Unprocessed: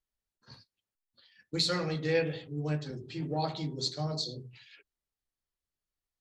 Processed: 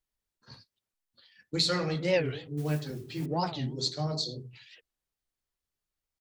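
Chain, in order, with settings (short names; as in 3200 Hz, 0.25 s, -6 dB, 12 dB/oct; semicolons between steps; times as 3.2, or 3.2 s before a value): 2.57–3.26 modulation noise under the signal 22 dB; record warp 45 rpm, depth 250 cents; gain +2 dB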